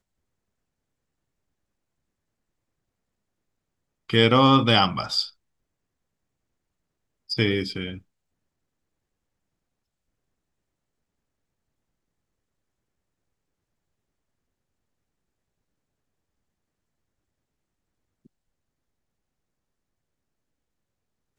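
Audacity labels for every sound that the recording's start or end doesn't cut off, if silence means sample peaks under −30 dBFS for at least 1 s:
4.100000	5.270000	sound
7.300000	7.950000	sound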